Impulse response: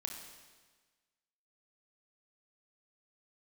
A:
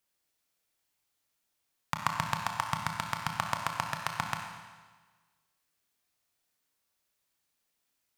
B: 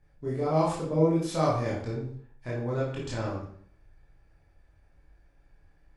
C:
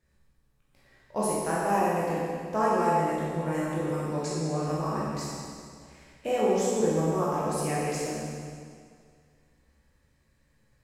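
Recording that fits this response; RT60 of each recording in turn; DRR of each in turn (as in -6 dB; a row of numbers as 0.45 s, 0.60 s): A; 1.4 s, 0.55 s, 2.1 s; 2.5 dB, -6.5 dB, -8.0 dB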